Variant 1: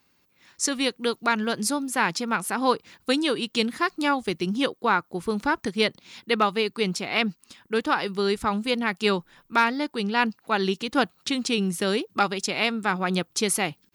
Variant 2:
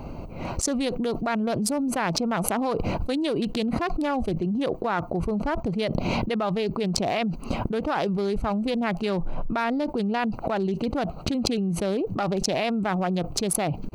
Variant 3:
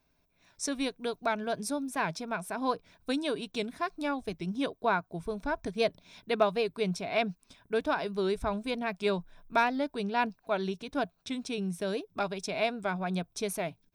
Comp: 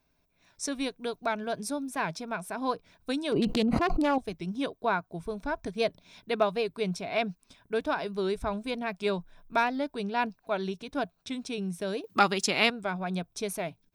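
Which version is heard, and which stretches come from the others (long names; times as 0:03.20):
3
0:03.32–0:04.18: punch in from 2
0:12.04–0:12.70: punch in from 1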